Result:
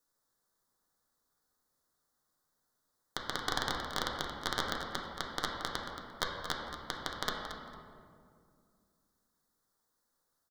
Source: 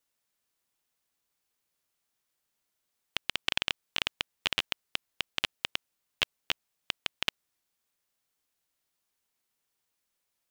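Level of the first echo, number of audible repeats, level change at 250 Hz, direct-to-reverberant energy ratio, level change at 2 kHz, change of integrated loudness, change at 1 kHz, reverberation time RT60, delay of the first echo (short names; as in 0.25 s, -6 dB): -10.5 dB, 1, +6.0 dB, -2.0 dB, -4.0 dB, -4.0 dB, +6.5 dB, 2.2 s, 0.226 s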